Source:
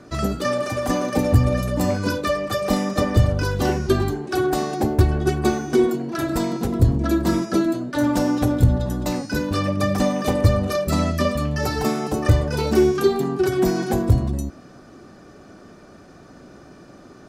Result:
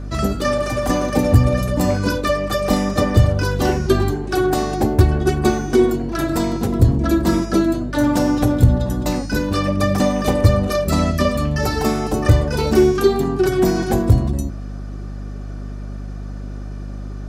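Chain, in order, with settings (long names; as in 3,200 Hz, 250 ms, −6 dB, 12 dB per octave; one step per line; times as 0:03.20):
mains hum 50 Hz, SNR 11 dB
level +3 dB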